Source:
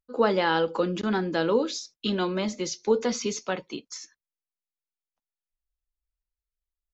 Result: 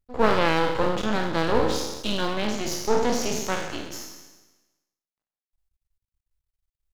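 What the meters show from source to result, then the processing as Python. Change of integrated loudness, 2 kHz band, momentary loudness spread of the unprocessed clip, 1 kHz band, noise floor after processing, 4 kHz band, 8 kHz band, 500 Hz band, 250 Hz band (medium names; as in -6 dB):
+1.5 dB, +3.5 dB, 10 LU, +4.0 dB, under -85 dBFS, +3.0 dB, no reading, +1.0 dB, +0.5 dB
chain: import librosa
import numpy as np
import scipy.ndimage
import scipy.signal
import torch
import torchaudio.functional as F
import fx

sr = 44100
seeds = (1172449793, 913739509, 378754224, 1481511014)

y = fx.spec_trails(x, sr, decay_s=1.16)
y = fx.low_shelf(y, sr, hz=110.0, db=9.0)
y = np.maximum(y, 0.0)
y = F.gain(torch.from_numpy(y), 2.0).numpy()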